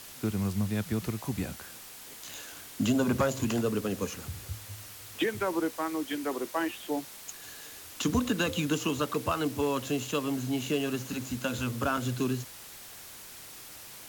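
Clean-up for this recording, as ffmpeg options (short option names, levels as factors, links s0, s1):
-af "adeclick=t=4,afwtdn=0.005"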